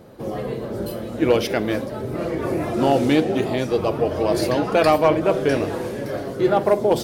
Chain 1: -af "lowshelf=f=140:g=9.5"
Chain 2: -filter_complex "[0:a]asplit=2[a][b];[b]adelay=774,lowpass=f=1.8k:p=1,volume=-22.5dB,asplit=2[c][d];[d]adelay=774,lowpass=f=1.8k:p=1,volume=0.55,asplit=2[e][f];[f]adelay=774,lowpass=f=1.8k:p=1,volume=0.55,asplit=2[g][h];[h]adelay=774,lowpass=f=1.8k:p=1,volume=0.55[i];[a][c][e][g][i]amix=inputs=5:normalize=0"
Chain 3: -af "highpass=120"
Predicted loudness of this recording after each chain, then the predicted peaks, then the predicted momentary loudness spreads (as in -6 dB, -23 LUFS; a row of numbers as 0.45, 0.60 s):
-20.0, -21.0, -21.5 LUFS; -5.0, -7.0, -5.0 dBFS; 10, 11, 11 LU